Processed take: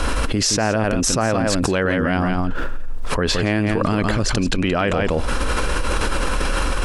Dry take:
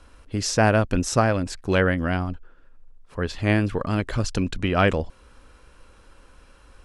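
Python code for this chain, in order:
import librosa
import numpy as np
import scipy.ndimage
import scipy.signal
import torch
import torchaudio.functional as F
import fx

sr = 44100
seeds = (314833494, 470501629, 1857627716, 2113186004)

y = fx.peak_eq(x, sr, hz=89.0, db=-5.5, octaves=0.82)
y = y + 10.0 ** (-8.5 / 20.0) * np.pad(y, (int(170 * sr / 1000.0), 0))[:len(y)]
y = fx.env_flatten(y, sr, amount_pct=100)
y = y * 10.0 ** (-3.5 / 20.0)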